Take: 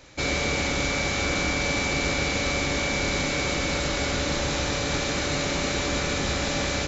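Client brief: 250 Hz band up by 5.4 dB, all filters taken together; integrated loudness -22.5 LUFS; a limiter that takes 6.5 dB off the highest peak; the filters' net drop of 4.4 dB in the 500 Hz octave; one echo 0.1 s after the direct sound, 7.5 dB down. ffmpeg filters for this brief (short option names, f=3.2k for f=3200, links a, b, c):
-af "equalizer=f=250:t=o:g=9,equalizer=f=500:t=o:g=-8,alimiter=limit=-18.5dB:level=0:latency=1,aecho=1:1:100:0.422,volume=4dB"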